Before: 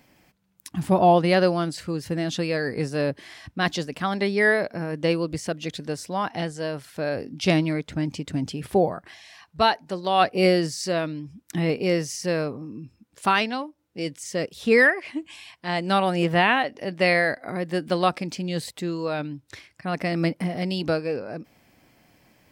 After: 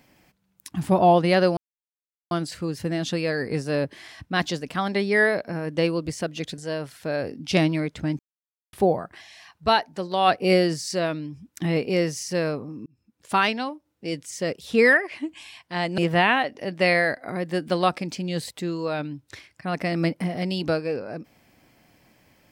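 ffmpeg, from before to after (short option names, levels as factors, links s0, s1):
-filter_complex "[0:a]asplit=7[s0][s1][s2][s3][s4][s5][s6];[s0]atrim=end=1.57,asetpts=PTS-STARTPTS,afade=t=out:st=1.566:d=0.004:c=hsin,apad=pad_dur=0.74[s7];[s1]atrim=start=1.57:end=5.842,asetpts=PTS-STARTPTS,afade=t=in:d=0.004:c=hsin[s8];[s2]atrim=start=6.508:end=8.12,asetpts=PTS-STARTPTS,afade=t=out:st=1.608:d=0.004:c=hsin[s9];[s3]atrim=start=8.12:end=8.66,asetpts=PTS-STARTPTS,volume=0[s10];[s4]atrim=start=8.66:end=12.79,asetpts=PTS-STARTPTS,afade=t=in:d=0.004:c=hsin,afade=t=out:st=4.126:d=0.004:c=hsin[s11];[s5]atrim=start=12.79:end=15.912,asetpts=PTS-STARTPTS,afade=t=in:d=0.53[s12];[s6]atrim=start=16.178[s13];[s7][s8]concat=n=2:v=0:a=1[s14];[s9][s10][s11][s12]concat=n=4:v=0:a=1[s15];[s14][s15]acrossfade=d=0.004:c1=hsin:c2=hsin[s16];[s16][s13]acrossfade=d=0.004:c1=hsin:c2=hsin"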